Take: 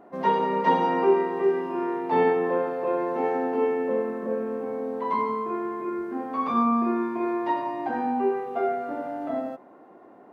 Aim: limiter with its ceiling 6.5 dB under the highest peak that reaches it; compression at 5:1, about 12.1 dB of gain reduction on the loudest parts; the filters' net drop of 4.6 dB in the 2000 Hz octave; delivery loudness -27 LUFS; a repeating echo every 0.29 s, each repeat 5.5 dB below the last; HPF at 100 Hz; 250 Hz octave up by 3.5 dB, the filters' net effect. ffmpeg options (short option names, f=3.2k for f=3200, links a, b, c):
-af "highpass=100,equalizer=f=250:t=o:g=4.5,equalizer=f=2k:t=o:g=-5.5,acompressor=threshold=-28dB:ratio=5,alimiter=level_in=1.5dB:limit=-24dB:level=0:latency=1,volume=-1.5dB,aecho=1:1:290|580|870|1160|1450|1740|2030:0.531|0.281|0.149|0.079|0.0419|0.0222|0.0118,volume=6dB"